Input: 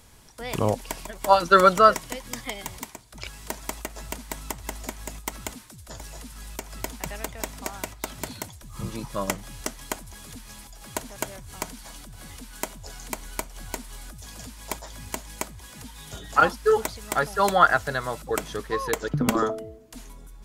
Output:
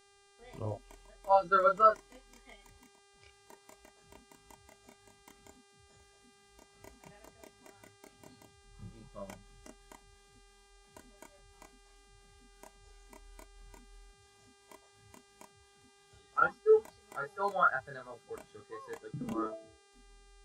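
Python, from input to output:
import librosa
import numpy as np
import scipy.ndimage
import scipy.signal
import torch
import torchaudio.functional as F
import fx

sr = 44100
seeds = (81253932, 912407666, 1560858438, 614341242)

y = fx.chorus_voices(x, sr, voices=2, hz=0.36, base_ms=29, depth_ms=1.6, mix_pct=45)
y = fx.dmg_buzz(y, sr, base_hz=400.0, harmonics=25, level_db=-43.0, tilt_db=-2, odd_only=False)
y = fx.spectral_expand(y, sr, expansion=1.5)
y = F.gain(torch.from_numpy(y), -6.5).numpy()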